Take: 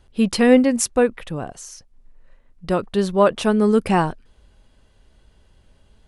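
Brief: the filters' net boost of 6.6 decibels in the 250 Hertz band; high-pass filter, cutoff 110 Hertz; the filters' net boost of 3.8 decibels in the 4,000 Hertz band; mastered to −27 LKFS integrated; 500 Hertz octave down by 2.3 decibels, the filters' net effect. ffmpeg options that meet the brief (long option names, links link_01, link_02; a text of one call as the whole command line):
ffmpeg -i in.wav -af "highpass=110,equalizer=frequency=250:width_type=o:gain=8.5,equalizer=frequency=500:width_type=o:gain=-5,equalizer=frequency=4000:width_type=o:gain=5,volume=-12.5dB" out.wav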